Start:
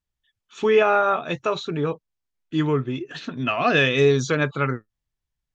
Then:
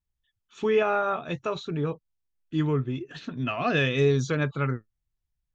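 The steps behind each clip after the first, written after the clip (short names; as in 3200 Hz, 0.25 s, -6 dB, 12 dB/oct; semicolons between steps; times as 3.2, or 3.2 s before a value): low shelf 180 Hz +10 dB; gain -7 dB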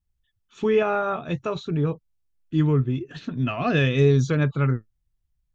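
low shelf 270 Hz +8.5 dB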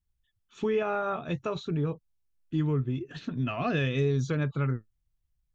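compressor 2:1, threshold -24 dBFS, peak gain reduction 6.5 dB; gain -3 dB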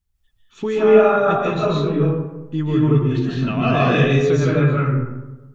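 reverb RT60 1.1 s, pre-delay 0.11 s, DRR -7 dB; gain +5 dB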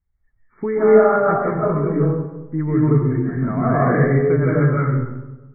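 brick-wall FIR low-pass 2300 Hz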